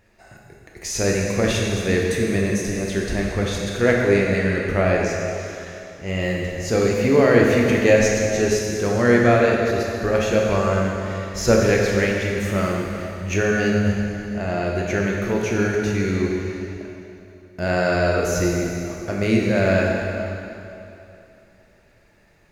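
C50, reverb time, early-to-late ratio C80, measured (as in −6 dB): 0.0 dB, 2.8 s, 1.0 dB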